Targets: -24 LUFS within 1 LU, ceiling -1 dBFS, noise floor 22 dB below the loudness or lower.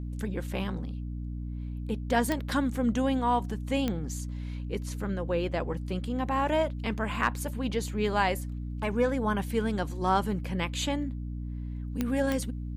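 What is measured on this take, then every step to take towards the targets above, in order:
clicks 4; hum 60 Hz; harmonics up to 300 Hz; hum level -33 dBFS; loudness -30.5 LUFS; peak -12.0 dBFS; loudness target -24.0 LUFS
-> de-click; notches 60/120/180/240/300 Hz; gain +6.5 dB

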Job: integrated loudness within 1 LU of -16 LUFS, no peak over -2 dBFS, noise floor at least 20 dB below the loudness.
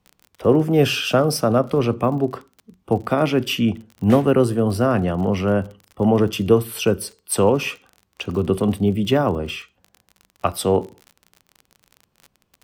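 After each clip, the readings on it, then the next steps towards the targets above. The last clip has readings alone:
ticks 41/s; loudness -20.0 LUFS; peak -2.0 dBFS; loudness target -16.0 LUFS
-> de-click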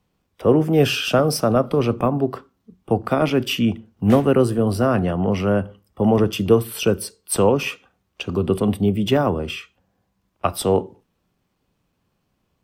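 ticks 0.40/s; loudness -20.0 LUFS; peak -2.0 dBFS; loudness target -16.0 LUFS
-> gain +4 dB; limiter -2 dBFS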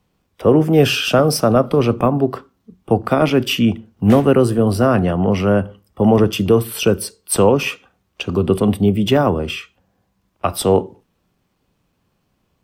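loudness -16.5 LUFS; peak -2.0 dBFS; noise floor -68 dBFS

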